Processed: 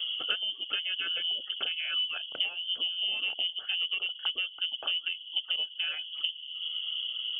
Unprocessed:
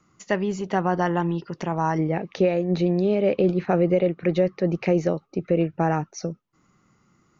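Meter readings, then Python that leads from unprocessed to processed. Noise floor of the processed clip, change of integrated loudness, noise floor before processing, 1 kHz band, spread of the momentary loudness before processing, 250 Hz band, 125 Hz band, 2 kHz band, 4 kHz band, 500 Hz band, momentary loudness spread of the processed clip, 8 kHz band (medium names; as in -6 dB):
-46 dBFS, -6.5 dB, -64 dBFS, -21.5 dB, 8 LU, under -35 dB, under -40 dB, 0.0 dB, +19.0 dB, -31.0 dB, 3 LU, no reading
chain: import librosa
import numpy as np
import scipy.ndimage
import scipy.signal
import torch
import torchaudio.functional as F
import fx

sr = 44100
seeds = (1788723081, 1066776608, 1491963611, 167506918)

y = fx.dereverb_blind(x, sr, rt60_s=0.94)
y = fx.peak_eq(y, sr, hz=1900.0, db=-7.5, octaves=2.6)
y = y + 0.7 * np.pad(y, (int(1.1 * sr / 1000.0), 0))[:len(y)]
y = fx.rider(y, sr, range_db=10, speed_s=0.5)
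y = fx.dmg_noise_band(y, sr, seeds[0], low_hz=58.0, high_hz=410.0, level_db=-45.0)
y = fx.fixed_phaser(y, sr, hz=370.0, stages=4)
y = fx.tube_stage(y, sr, drive_db=19.0, bias=0.35)
y = fx.freq_invert(y, sr, carrier_hz=3300)
y = fx.band_squash(y, sr, depth_pct=100)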